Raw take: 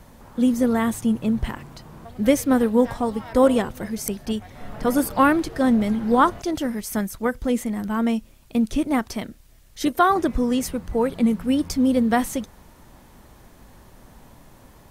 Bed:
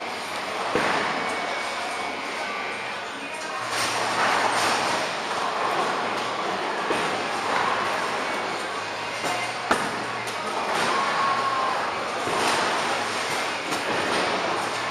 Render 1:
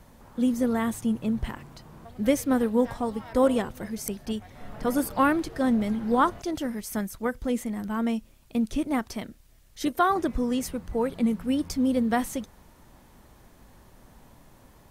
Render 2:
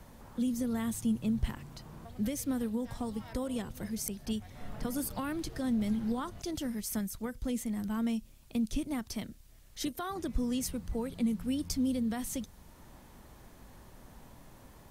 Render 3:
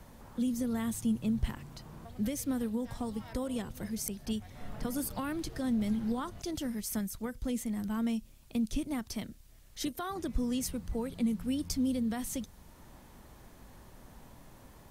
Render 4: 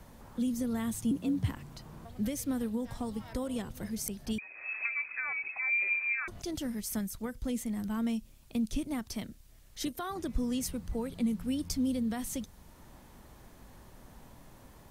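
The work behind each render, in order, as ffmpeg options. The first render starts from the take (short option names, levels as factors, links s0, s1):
-af "volume=0.562"
-filter_complex "[0:a]alimiter=limit=0.119:level=0:latency=1:release=202,acrossover=split=220|3000[s0][s1][s2];[s1]acompressor=threshold=0.00158:ratio=1.5[s3];[s0][s3][s2]amix=inputs=3:normalize=0"
-af anull
-filter_complex "[0:a]asettb=1/sr,asplit=3[s0][s1][s2];[s0]atrim=end=1.114[s3];[s1]atrim=start=1.11:end=1.52,asetpts=PTS-STARTPTS,afade=t=in:d=0.004:c=qsin,afade=t=out:st=0.406:d=0.004:c=qsin,afreqshift=57[s4];[s2]atrim=start=1.516[s5];[s3][s4]acrossfade=d=0.004:c1=hsin:c2=qsin[s6];[s6][s5]acrossfade=d=0.004:c1=qsin:c2=hsin,asettb=1/sr,asplit=3[s7][s8][s9];[s7]atrim=end=4.384[s10];[s8]atrim=start=4.38:end=6.28,asetpts=PTS-STARTPTS,afade=t=in:d=0.004:c=qsin,afade=t=out:st=1.896:d=0.004:c=qsin,lowpass=f=2200:t=q:w=0.5098,lowpass=f=2200:t=q:w=0.6013,lowpass=f=2200:t=q:w=0.9,lowpass=f=2200:t=q:w=2.563,afreqshift=-2600[s11];[s9]atrim=start=6.276[s12];[s10][s11]acrossfade=d=0.004:c1=hsin:c2=qsin[s13];[s13][s12]acrossfade=d=0.004:c1=qsin:c2=hsin"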